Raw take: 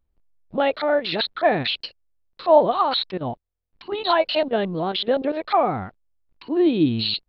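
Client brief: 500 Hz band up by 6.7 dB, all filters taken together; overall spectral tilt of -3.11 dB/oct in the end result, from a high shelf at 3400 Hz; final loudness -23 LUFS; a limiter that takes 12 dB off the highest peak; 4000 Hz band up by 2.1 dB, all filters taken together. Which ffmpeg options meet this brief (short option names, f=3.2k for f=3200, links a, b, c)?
-af "equalizer=f=500:t=o:g=9,highshelf=f=3.4k:g=-8.5,equalizer=f=4k:t=o:g=7.5,volume=-2.5dB,alimiter=limit=-13dB:level=0:latency=1"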